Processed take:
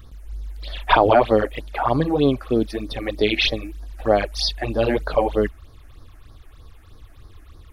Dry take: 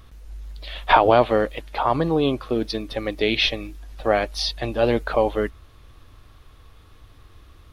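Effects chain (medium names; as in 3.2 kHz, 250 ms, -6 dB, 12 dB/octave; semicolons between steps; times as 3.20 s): phase shifter stages 8, 3.2 Hz, lowest notch 130–2800 Hz; trim +3.5 dB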